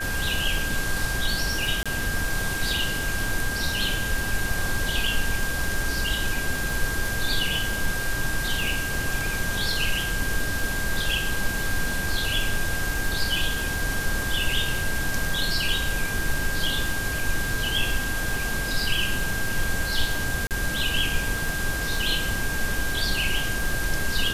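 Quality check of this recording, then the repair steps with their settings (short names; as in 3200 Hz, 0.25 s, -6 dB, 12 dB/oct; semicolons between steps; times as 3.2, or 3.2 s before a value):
crackle 35/s -30 dBFS
tone 1600 Hz -29 dBFS
1.83–1.86 gap 26 ms
20.47–20.51 gap 38 ms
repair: de-click; notch 1600 Hz, Q 30; interpolate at 1.83, 26 ms; interpolate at 20.47, 38 ms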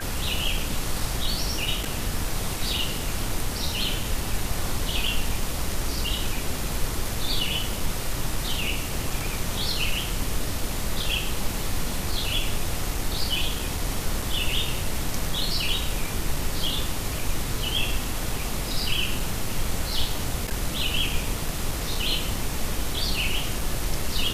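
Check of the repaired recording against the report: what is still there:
none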